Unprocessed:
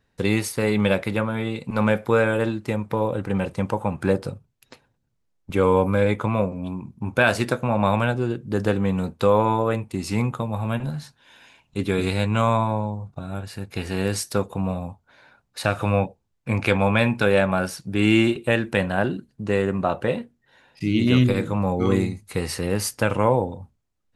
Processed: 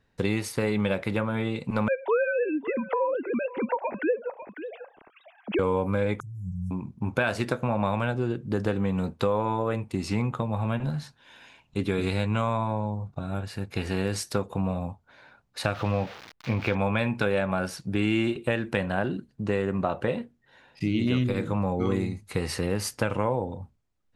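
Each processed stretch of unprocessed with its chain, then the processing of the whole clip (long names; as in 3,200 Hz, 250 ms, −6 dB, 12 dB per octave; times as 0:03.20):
0:01.88–0:05.59: three sine waves on the formant tracks + single-tap delay 548 ms −23.5 dB + upward compression, threshold −27 dBFS
0:06.20–0:06.71: linear-phase brick-wall band-stop 180–5,200 Hz + compressor whose output falls as the input rises −34 dBFS
0:10.04–0:10.92: high-shelf EQ 9,100 Hz −8.5 dB + one half of a high-frequency compander encoder only
0:15.74–0:16.75: spike at every zero crossing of −14.5 dBFS + high-frequency loss of the air 280 metres
whole clip: high-shelf EQ 7,900 Hz −8.5 dB; downward compressor 3 to 1, threshold −23 dBFS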